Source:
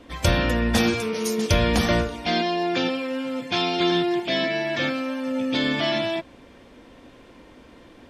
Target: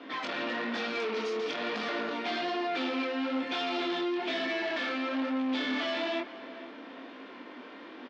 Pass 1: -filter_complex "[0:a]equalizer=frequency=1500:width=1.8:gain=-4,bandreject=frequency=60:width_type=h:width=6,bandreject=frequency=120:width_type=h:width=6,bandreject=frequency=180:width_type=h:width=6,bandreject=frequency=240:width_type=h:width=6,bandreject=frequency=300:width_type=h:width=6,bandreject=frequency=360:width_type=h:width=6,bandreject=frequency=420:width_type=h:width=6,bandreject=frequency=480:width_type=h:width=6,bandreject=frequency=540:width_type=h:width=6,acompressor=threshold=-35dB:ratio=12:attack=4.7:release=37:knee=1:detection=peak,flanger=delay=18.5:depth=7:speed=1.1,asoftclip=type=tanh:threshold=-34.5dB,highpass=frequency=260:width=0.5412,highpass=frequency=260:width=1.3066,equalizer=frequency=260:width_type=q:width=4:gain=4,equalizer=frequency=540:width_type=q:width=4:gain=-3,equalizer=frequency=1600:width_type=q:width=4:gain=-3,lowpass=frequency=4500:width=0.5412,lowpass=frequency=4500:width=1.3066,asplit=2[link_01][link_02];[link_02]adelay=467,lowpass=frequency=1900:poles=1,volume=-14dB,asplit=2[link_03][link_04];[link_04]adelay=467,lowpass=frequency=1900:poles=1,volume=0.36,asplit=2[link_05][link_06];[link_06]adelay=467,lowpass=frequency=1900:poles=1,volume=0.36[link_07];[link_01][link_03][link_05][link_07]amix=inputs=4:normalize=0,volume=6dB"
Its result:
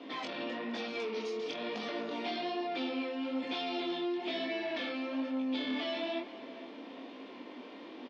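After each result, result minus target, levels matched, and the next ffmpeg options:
downward compressor: peak gain reduction +7.5 dB; 2,000 Hz band −3.0 dB
-filter_complex "[0:a]equalizer=frequency=1500:width=1.8:gain=-4,bandreject=frequency=60:width_type=h:width=6,bandreject=frequency=120:width_type=h:width=6,bandreject=frequency=180:width_type=h:width=6,bandreject=frequency=240:width_type=h:width=6,bandreject=frequency=300:width_type=h:width=6,bandreject=frequency=360:width_type=h:width=6,bandreject=frequency=420:width_type=h:width=6,bandreject=frequency=480:width_type=h:width=6,bandreject=frequency=540:width_type=h:width=6,acompressor=threshold=-26dB:ratio=12:attack=4.7:release=37:knee=1:detection=peak,flanger=delay=18.5:depth=7:speed=1.1,asoftclip=type=tanh:threshold=-34.5dB,highpass=frequency=260:width=0.5412,highpass=frequency=260:width=1.3066,equalizer=frequency=260:width_type=q:width=4:gain=4,equalizer=frequency=540:width_type=q:width=4:gain=-3,equalizer=frequency=1600:width_type=q:width=4:gain=-3,lowpass=frequency=4500:width=0.5412,lowpass=frequency=4500:width=1.3066,asplit=2[link_01][link_02];[link_02]adelay=467,lowpass=frequency=1900:poles=1,volume=-14dB,asplit=2[link_03][link_04];[link_04]adelay=467,lowpass=frequency=1900:poles=1,volume=0.36,asplit=2[link_05][link_06];[link_06]adelay=467,lowpass=frequency=1900:poles=1,volume=0.36[link_07];[link_01][link_03][link_05][link_07]amix=inputs=4:normalize=0,volume=6dB"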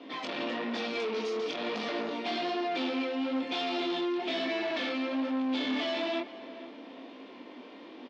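2,000 Hz band −3.0 dB
-filter_complex "[0:a]equalizer=frequency=1500:width=1.8:gain=6.5,bandreject=frequency=60:width_type=h:width=6,bandreject=frequency=120:width_type=h:width=6,bandreject=frequency=180:width_type=h:width=6,bandreject=frequency=240:width_type=h:width=6,bandreject=frequency=300:width_type=h:width=6,bandreject=frequency=360:width_type=h:width=6,bandreject=frequency=420:width_type=h:width=6,bandreject=frequency=480:width_type=h:width=6,bandreject=frequency=540:width_type=h:width=6,acompressor=threshold=-26dB:ratio=12:attack=4.7:release=37:knee=1:detection=peak,flanger=delay=18.5:depth=7:speed=1.1,asoftclip=type=tanh:threshold=-34.5dB,highpass=frequency=260:width=0.5412,highpass=frequency=260:width=1.3066,equalizer=frequency=260:width_type=q:width=4:gain=4,equalizer=frequency=540:width_type=q:width=4:gain=-3,equalizer=frequency=1600:width_type=q:width=4:gain=-3,lowpass=frequency=4500:width=0.5412,lowpass=frequency=4500:width=1.3066,asplit=2[link_01][link_02];[link_02]adelay=467,lowpass=frequency=1900:poles=1,volume=-14dB,asplit=2[link_03][link_04];[link_04]adelay=467,lowpass=frequency=1900:poles=1,volume=0.36,asplit=2[link_05][link_06];[link_06]adelay=467,lowpass=frequency=1900:poles=1,volume=0.36[link_07];[link_01][link_03][link_05][link_07]amix=inputs=4:normalize=0,volume=6dB"

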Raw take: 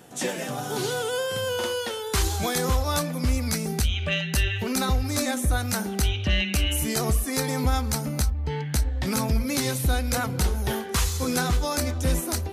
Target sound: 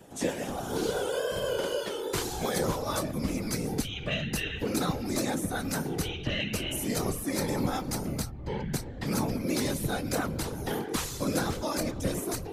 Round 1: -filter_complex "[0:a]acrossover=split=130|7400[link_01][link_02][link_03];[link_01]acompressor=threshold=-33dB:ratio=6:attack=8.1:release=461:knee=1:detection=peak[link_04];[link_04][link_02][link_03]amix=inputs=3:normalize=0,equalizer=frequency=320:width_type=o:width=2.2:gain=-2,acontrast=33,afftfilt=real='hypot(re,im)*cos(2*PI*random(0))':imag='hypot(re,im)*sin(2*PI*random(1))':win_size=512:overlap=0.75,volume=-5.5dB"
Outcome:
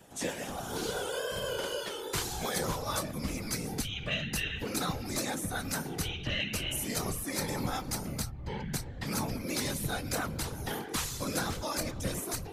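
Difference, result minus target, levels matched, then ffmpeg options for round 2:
250 Hz band −3.0 dB
-filter_complex "[0:a]acrossover=split=130|7400[link_01][link_02][link_03];[link_01]acompressor=threshold=-33dB:ratio=6:attack=8.1:release=461:knee=1:detection=peak[link_04];[link_04][link_02][link_03]amix=inputs=3:normalize=0,equalizer=frequency=320:width_type=o:width=2.2:gain=5.5,acontrast=33,afftfilt=real='hypot(re,im)*cos(2*PI*random(0))':imag='hypot(re,im)*sin(2*PI*random(1))':win_size=512:overlap=0.75,volume=-5.5dB"

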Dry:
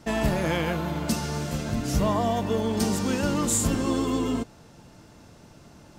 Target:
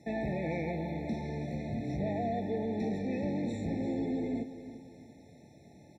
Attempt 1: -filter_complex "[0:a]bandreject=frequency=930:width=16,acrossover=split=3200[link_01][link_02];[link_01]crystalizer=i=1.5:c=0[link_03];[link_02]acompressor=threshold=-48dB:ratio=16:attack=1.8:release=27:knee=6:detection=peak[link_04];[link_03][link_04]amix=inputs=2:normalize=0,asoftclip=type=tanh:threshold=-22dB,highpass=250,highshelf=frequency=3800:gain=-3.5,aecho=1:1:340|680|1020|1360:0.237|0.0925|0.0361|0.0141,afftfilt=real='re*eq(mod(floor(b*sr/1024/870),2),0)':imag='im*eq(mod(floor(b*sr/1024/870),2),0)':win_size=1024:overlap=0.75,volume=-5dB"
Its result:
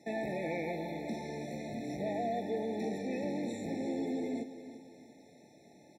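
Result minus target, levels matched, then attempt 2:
downward compressor: peak gain reduction −11 dB; 125 Hz band −6.5 dB
-filter_complex "[0:a]bandreject=frequency=930:width=16,acrossover=split=3200[link_01][link_02];[link_01]crystalizer=i=1.5:c=0[link_03];[link_02]acompressor=threshold=-59.5dB:ratio=16:attack=1.8:release=27:knee=6:detection=peak[link_04];[link_03][link_04]amix=inputs=2:normalize=0,asoftclip=type=tanh:threshold=-22dB,highpass=88,highshelf=frequency=3800:gain=-3.5,aecho=1:1:340|680|1020|1360:0.237|0.0925|0.0361|0.0141,afftfilt=real='re*eq(mod(floor(b*sr/1024/870),2),0)':imag='im*eq(mod(floor(b*sr/1024/870),2),0)':win_size=1024:overlap=0.75,volume=-5dB"

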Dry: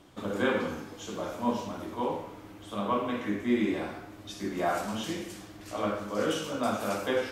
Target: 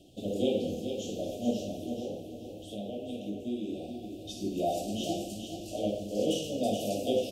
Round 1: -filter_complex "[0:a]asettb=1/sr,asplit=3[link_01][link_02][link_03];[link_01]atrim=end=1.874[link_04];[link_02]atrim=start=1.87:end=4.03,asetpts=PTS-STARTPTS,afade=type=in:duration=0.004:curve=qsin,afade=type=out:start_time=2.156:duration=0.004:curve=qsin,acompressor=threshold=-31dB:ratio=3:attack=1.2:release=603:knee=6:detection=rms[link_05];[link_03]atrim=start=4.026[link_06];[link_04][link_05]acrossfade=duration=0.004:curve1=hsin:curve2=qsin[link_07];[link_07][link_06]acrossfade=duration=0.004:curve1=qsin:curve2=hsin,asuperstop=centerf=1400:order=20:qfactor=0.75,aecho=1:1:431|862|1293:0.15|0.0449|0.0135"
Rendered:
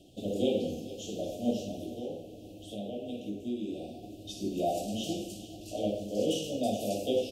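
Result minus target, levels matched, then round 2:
echo-to-direct −9 dB
-filter_complex "[0:a]asettb=1/sr,asplit=3[link_01][link_02][link_03];[link_01]atrim=end=1.874[link_04];[link_02]atrim=start=1.87:end=4.03,asetpts=PTS-STARTPTS,afade=type=in:duration=0.004:curve=qsin,afade=type=out:start_time=2.156:duration=0.004:curve=qsin,acompressor=threshold=-31dB:ratio=3:attack=1.2:release=603:knee=6:detection=rms[link_05];[link_03]atrim=start=4.026[link_06];[link_04][link_05]acrossfade=duration=0.004:curve1=hsin:curve2=qsin[link_07];[link_07][link_06]acrossfade=duration=0.004:curve1=qsin:curve2=hsin,asuperstop=centerf=1400:order=20:qfactor=0.75,aecho=1:1:431|862|1293|1724:0.422|0.127|0.038|0.0114"

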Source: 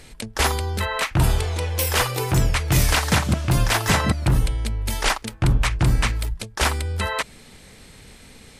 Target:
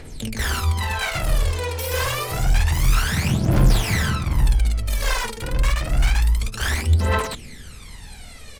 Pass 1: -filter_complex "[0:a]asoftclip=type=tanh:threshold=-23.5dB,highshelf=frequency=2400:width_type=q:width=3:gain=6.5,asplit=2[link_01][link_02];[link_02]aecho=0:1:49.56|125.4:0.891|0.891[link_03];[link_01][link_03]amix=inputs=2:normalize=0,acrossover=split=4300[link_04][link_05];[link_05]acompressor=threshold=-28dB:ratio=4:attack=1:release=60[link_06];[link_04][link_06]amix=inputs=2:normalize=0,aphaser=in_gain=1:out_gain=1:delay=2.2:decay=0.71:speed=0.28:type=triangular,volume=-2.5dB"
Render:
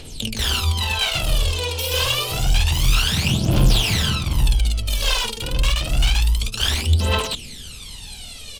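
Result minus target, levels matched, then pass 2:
4,000 Hz band +7.5 dB
-filter_complex "[0:a]asoftclip=type=tanh:threshold=-23.5dB,asplit=2[link_01][link_02];[link_02]aecho=0:1:49.56|125.4:0.891|0.891[link_03];[link_01][link_03]amix=inputs=2:normalize=0,acrossover=split=4300[link_04][link_05];[link_05]acompressor=threshold=-28dB:ratio=4:attack=1:release=60[link_06];[link_04][link_06]amix=inputs=2:normalize=0,aphaser=in_gain=1:out_gain=1:delay=2.2:decay=0.71:speed=0.28:type=triangular,volume=-2.5dB"

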